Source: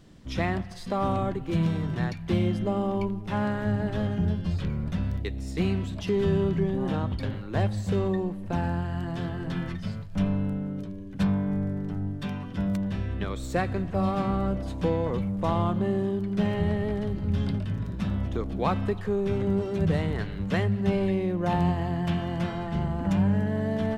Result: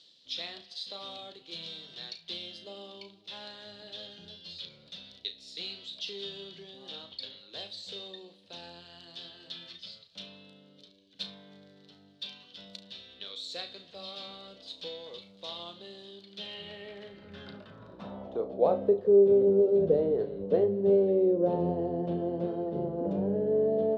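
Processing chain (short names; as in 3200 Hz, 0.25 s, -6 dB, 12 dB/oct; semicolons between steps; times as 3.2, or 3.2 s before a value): ten-band EQ 125 Hz +3 dB, 250 Hz +3 dB, 500 Hz +11 dB, 1000 Hz -4 dB, 2000 Hz -6 dB, 4000 Hz +12 dB; flutter echo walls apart 6 m, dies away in 0.23 s; reverse; upward compressor, threshold -31 dBFS; reverse; band-pass sweep 3800 Hz -> 450 Hz, 16.29–19.03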